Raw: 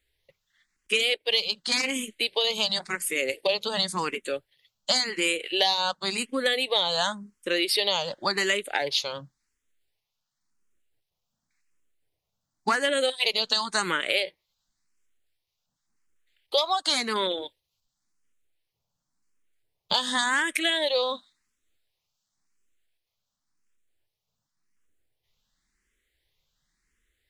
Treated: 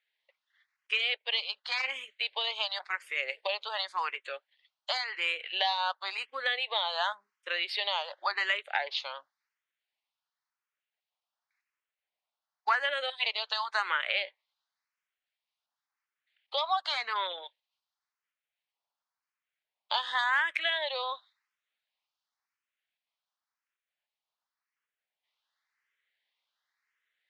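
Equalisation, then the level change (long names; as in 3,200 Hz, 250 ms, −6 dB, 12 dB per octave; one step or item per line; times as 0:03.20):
high-pass filter 730 Hz 24 dB per octave
dynamic equaliser 6,200 Hz, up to −5 dB, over −42 dBFS, Q 1.2
high-frequency loss of the air 220 metres
0.0 dB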